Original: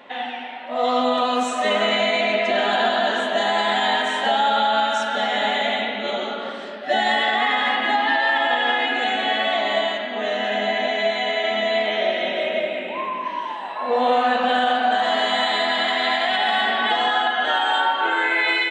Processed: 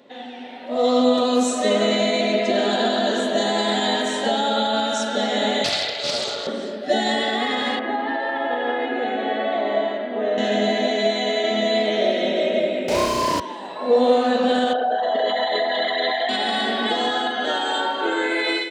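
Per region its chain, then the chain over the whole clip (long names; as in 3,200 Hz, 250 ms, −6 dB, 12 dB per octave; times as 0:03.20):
0:05.64–0:06.47: Bessel high-pass filter 700 Hz, order 6 + parametric band 5,900 Hz +13.5 dB 0.98 octaves + highs frequency-modulated by the lows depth 0.22 ms
0:07.79–0:10.38: low-pass filter 1,700 Hz + parametric band 160 Hz −9 dB 1.5 octaves
0:12.88–0:13.40: mid-hump overdrive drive 28 dB, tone 2,100 Hz, clips at −16.5 dBFS + flutter between parallel walls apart 5.7 metres, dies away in 0.78 s
0:14.73–0:16.29: spectral envelope exaggerated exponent 2 + low-pass with resonance 6,000 Hz, resonance Q 12 + parametric band 150 Hz +8 dB 1.7 octaves
whole clip: automatic gain control gain up to 10.5 dB; high-pass filter 61 Hz; flat-topped bell 1,500 Hz −12.5 dB 2.5 octaves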